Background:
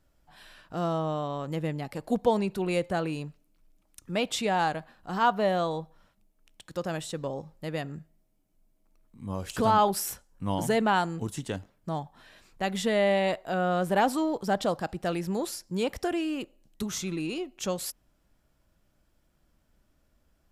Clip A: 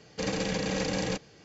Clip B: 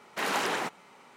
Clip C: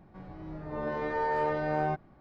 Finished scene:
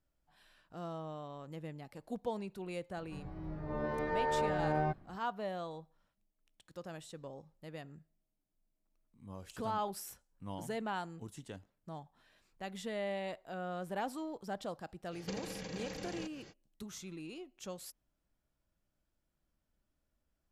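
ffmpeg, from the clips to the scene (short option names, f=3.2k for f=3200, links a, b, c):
-filter_complex "[0:a]volume=-14dB[a];[3:a]lowshelf=f=180:g=6.5[b];[1:a]acompressor=threshold=-44dB:ratio=10:attack=56:release=141:knee=1:detection=rms[c];[b]atrim=end=2.2,asetpts=PTS-STARTPTS,volume=-4.5dB,afade=t=in:d=0.004:c=hsin,afade=t=out:st=2.196:d=0.004:c=hsin,adelay=2970[d];[c]atrim=end=1.44,asetpts=PTS-STARTPTS,afade=t=in:d=0.05,afade=t=out:st=1.39:d=0.05,adelay=15100[e];[a][d][e]amix=inputs=3:normalize=0"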